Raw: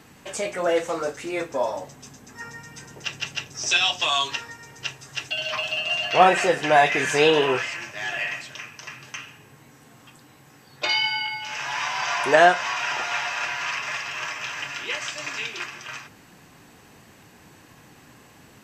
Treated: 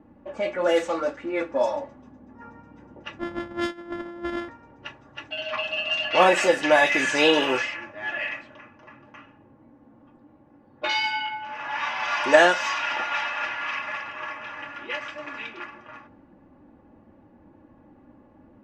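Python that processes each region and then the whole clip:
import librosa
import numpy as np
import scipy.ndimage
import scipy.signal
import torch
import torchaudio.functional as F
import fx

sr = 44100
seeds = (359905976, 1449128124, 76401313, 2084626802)

y = fx.chain(x, sr, fx.sample_sort(block=128),
    fx.over_compress(threshold_db=-29.0, ratio=-0.5), at=(3.19, 4.49))
y = fx.env_lowpass(y, sr, base_hz=630.0, full_db=-17.0)
y = y + 0.67 * np.pad(y, (int(3.5 * sr / 1000.0), 0))[:len(y)]
y = y * 10.0 ** (-1.0 / 20.0)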